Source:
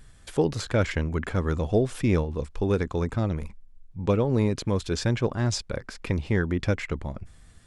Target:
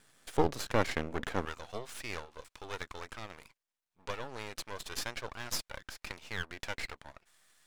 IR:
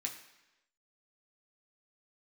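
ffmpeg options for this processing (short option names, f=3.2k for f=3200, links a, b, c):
-af "asetnsamples=n=441:p=0,asendcmd='1.45 highpass f 1000',highpass=270,aeval=exprs='max(val(0),0)':c=same"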